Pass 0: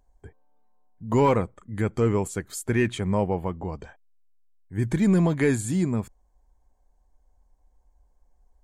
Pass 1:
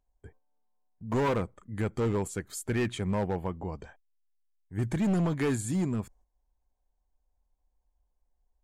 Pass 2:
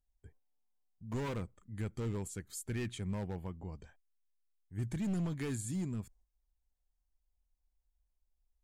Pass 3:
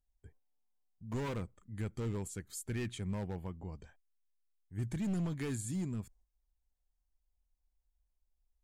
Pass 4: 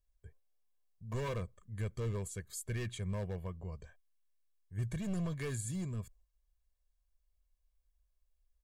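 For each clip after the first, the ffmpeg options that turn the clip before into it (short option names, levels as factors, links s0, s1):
-af "agate=range=0.355:threshold=0.00251:ratio=16:detection=peak,volume=9.44,asoftclip=hard,volume=0.106,volume=0.631"
-af "equalizer=f=760:w=0.37:g=-9.5,volume=0.596"
-af anull
-af "aecho=1:1:1.8:0.64,volume=0.891"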